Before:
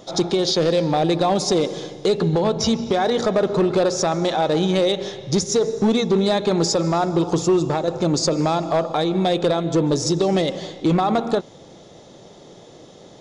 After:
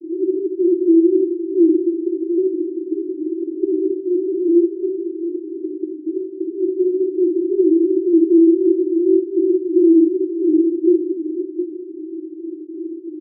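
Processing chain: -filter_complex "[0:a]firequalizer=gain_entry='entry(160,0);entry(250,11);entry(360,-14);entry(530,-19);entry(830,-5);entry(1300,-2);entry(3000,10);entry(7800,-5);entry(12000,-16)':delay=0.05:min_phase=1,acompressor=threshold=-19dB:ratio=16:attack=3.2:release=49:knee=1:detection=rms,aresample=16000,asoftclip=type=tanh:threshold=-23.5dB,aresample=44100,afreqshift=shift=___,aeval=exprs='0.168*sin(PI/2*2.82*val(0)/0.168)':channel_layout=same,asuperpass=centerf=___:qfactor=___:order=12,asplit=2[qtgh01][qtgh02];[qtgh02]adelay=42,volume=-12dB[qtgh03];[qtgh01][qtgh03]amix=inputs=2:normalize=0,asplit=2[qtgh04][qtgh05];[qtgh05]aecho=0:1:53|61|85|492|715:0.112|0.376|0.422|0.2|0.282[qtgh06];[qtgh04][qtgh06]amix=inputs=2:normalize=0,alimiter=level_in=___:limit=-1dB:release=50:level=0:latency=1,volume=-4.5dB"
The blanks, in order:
34, 350, 4.2, 16dB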